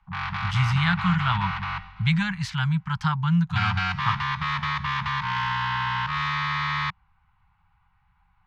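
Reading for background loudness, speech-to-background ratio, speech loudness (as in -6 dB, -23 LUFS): -27.0 LUFS, 1.5 dB, -25.5 LUFS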